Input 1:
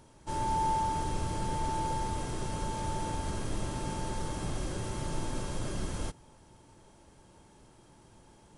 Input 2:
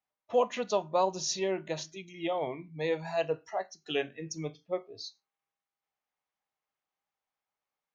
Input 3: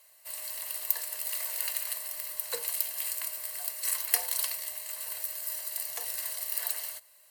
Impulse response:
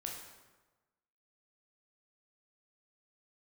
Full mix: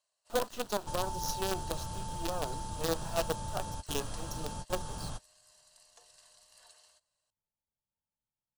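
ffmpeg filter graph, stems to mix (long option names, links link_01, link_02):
-filter_complex "[0:a]equalizer=frequency=350:width_type=o:width=0.64:gain=-12.5,acrossover=split=600|3200[link_01][link_02][link_03];[link_01]acompressor=threshold=-40dB:ratio=4[link_04];[link_02]acompressor=threshold=-47dB:ratio=4[link_05];[link_03]acompressor=threshold=-50dB:ratio=4[link_06];[link_04][link_05][link_06]amix=inputs=3:normalize=0,adelay=600,volume=2dB[link_07];[1:a]bandreject=frequency=2300:width=5.2,alimiter=limit=-21.5dB:level=0:latency=1:release=150,acrusher=bits=5:dc=4:mix=0:aa=0.000001,volume=-1dB,asplit=2[link_08][link_09];[2:a]lowpass=frequency=7700:width=0.5412,lowpass=frequency=7700:width=1.3066,volume=-17dB[link_10];[link_09]apad=whole_len=404647[link_11];[link_07][link_11]sidechaingate=range=-42dB:threshold=-56dB:ratio=16:detection=peak[link_12];[link_12][link_08][link_10]amix=inputs=3:normalize=0,equalizer=frequency=2100:width=3.2:gain=-13"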